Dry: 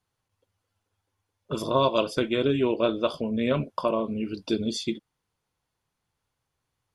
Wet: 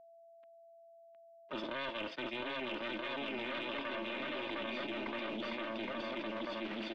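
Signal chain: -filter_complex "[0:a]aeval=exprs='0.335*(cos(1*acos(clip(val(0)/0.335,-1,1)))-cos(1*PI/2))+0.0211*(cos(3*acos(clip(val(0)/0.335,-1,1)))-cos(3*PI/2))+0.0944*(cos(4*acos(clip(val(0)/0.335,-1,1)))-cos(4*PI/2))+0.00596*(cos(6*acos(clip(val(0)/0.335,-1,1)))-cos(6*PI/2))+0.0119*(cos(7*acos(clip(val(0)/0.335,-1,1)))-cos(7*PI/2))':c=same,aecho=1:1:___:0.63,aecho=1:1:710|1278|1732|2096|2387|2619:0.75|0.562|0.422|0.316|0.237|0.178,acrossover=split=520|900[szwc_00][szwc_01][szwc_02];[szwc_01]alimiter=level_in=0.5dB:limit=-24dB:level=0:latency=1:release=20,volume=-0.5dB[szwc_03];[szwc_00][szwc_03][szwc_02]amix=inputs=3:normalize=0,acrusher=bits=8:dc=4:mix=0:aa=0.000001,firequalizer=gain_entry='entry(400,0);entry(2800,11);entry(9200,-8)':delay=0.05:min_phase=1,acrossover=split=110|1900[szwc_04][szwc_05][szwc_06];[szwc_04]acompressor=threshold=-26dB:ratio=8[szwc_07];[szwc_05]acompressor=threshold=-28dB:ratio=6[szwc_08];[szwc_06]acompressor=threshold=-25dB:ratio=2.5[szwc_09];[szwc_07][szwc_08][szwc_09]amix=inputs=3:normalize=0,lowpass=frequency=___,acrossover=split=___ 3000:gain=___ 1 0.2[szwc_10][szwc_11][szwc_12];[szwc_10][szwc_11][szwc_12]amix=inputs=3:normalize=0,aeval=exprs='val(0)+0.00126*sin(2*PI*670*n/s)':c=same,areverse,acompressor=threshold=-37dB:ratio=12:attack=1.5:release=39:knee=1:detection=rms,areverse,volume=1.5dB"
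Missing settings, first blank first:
3.3, 3900, 160, 0.0794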